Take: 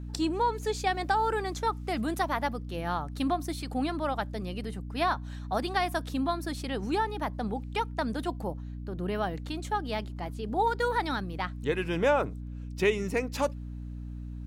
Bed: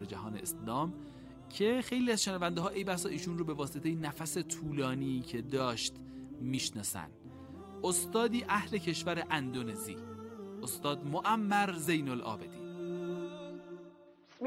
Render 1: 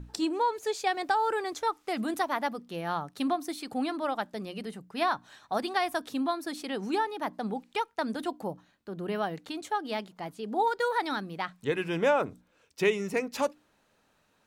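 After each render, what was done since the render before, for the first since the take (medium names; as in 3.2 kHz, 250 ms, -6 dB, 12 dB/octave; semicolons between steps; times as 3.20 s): hum notches 60/120/180/240/300 Hz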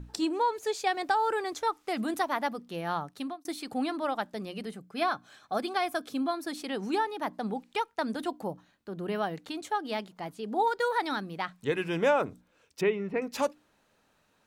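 3.03–3.45 s: fade out; 4.73–6.34 s: comb of notches 930 Hz; 12.81–13.22 s: distance through air 430 m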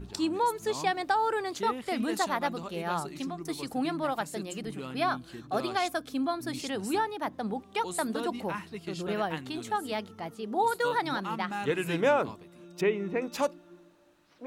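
add bed -5.5 dB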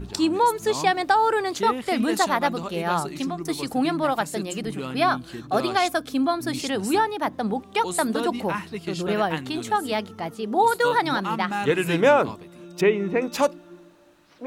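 trim +7.5 dB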